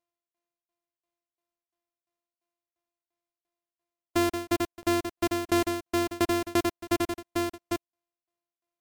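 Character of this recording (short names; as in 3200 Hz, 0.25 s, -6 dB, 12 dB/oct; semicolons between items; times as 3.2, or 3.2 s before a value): a buzz of ramps at a fixed pitch in blocks of 128 samples; tremolo saw down 2.9 Hz, depth 100%; MP3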